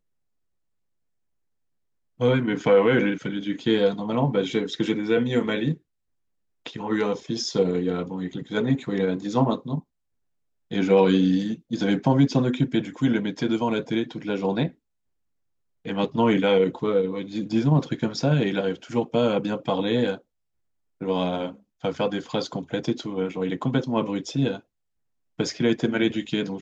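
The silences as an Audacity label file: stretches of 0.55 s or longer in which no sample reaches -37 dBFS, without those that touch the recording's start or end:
5.750000	6.660000	silence
9.800000	10.710000	silence
14.690000	15.850000	silence
20.170000	21.010000	silence
24.590000	25.390000	silence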